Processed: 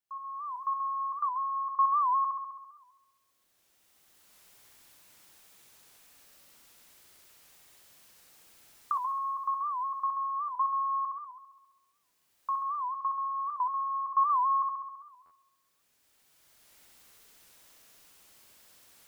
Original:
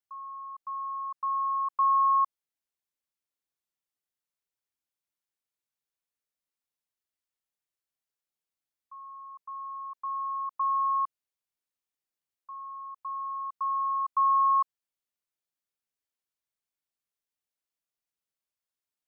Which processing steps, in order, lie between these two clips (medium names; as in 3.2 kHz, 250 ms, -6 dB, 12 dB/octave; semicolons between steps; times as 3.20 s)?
recorder AGC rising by 14 dB/s; 12.52–13.40 s: distance through air 84 m; flutter echo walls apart 11.4 m, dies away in 1.2 s; on a send at -24 dB: reverberation RT60 0.45 s, pre-delay 15 ms; on the sum: buffer glitch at 15.25 s, samples 512, times 4; warped record 78 rpm, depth 160 cents